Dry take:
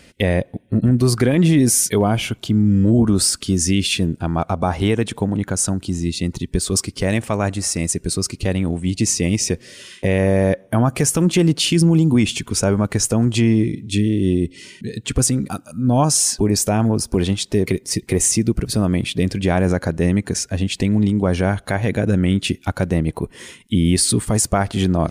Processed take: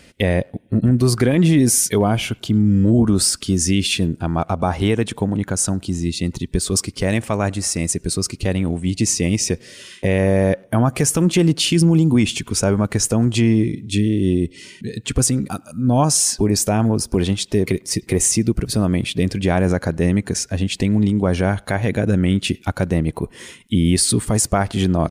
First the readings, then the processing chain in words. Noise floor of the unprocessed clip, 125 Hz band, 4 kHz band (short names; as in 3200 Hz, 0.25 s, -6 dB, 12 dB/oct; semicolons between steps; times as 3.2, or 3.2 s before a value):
-50 dBFS, 0.0 dB, 0.0 dB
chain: speakerphone echo 0.1 s, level -27 dB